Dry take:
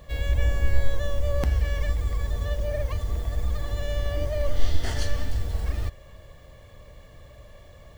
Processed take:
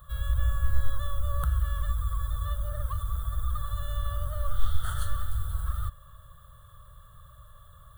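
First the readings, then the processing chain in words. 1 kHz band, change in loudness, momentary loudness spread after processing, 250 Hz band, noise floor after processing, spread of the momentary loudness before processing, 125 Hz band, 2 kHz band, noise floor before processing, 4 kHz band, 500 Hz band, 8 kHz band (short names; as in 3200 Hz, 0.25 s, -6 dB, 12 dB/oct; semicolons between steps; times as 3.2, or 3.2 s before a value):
+2.5 dB, -3.5 dB, 5 LU, -13.0 dB, -52 dBFS, 5 LU, -3.0 dB, -7.5 dB, -49 dBFS, -6.5 dB, -14.5 dB, n/a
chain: EQ curve 150 Hz 0 dB, 270 Hz -29 dB, 550 Hz -11 dB, 840 Hz -12 dB, 1300 Hz +15 dB, 2300 Hz -26 dB, 3500 Hz +1 dB, 5200 Hz -21 dB, 9400 Hz +9 dB; gain -3 dB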